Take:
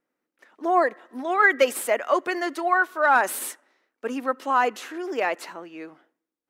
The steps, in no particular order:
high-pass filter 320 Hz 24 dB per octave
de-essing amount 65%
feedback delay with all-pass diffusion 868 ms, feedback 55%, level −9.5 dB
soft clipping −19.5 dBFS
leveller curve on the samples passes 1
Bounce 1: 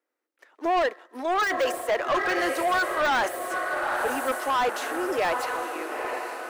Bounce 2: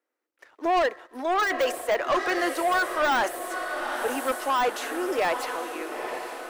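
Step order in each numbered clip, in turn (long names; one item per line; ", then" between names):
feedback delay with all-pass diffusion, then leveller curve on the samples, then high-pass filter, then soft clipping, then de-essing
high-pass filter, then soft clipping, then feedback delay with all-pass diffusion, then leveller curve on the samples, then de-essing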